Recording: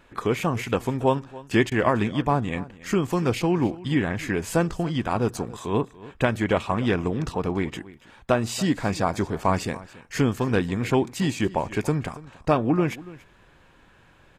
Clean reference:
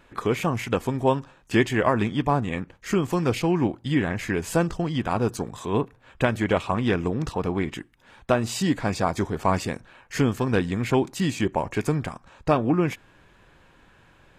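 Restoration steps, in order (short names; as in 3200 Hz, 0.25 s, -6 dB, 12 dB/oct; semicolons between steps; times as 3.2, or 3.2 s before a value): interpolate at 1.7, 14 ms; inverse comb 0.284 s -19 dB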